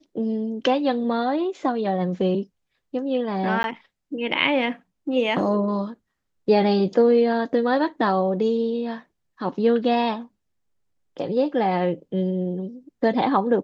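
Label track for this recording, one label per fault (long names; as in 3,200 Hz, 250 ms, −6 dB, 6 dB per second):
3.630000	3.640000	drop-out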